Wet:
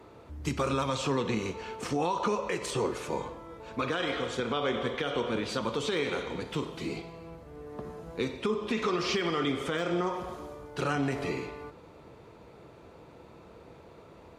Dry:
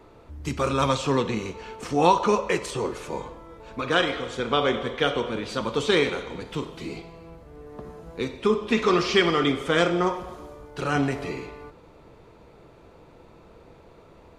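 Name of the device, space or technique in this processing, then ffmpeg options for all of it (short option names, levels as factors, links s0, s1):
podcast mastering chain: -af "highpass=64,deesser=0.6,acompressor=threshold=0.0562:ratio=2,alimiter=limit=0.112:level=0:latency=1:release=84" -ar 48000 -c:a libmp3lame -b:a 112k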